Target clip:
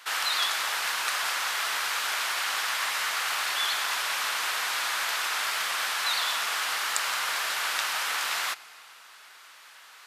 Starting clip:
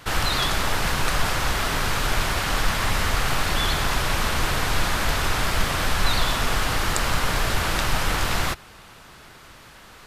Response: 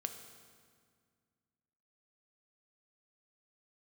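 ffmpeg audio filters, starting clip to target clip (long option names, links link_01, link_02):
-filter_complex "[0:a]highpass=1100,asplit=2[link_01][link_02];[1:a]atrim=start_sample=2205,afade=type=out:start_time=0.43:duration=0.01,atrim=end_sample=19404,asetrate=27342,aresample=44100[link_03];[link_02][link_03]afir=irnorm=-1:irlink=0,volume=-12.5dB[link_04];[link_01][link_04]amix=inputs=2:normalize=0,volume=-3.5dB"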